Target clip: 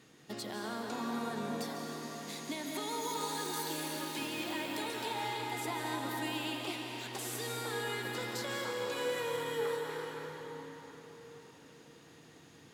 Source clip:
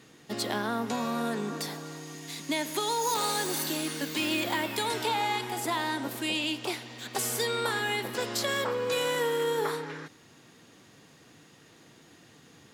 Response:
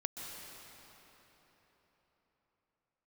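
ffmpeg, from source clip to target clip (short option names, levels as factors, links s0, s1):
-filter_complex "[0:a]alimiter=level_in=1.12:limit=0.0631:level=0:latency=1:release=326,volume=0.891[s0];[1:a]atrim=start_sample=2205,asetrate=38808,aresample=44100[s1];[s0][s1]afir=irnorm=-1:irlink=0,volume=0.631"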